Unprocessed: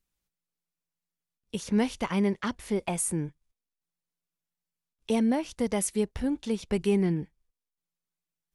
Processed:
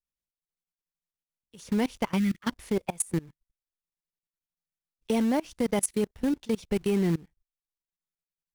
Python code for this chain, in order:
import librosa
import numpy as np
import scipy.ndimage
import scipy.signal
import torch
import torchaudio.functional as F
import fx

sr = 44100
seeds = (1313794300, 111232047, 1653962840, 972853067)

p1 = fx.quant_companded(x, sr, bits=4)
p2 = x + (p1 * 10.0 ** (-4.0 / 20.0))
p3 = fx.spec_box(p2, sr, start_s=2.18, length_s=0.24, low_hz=340.0, high_hz=1200.0, gain_db=-20)
p4 = fx.noise_reduce_blind(p3, sr, reduce_db=7)
y = fx.level_steps(p4, sr, step_db=24)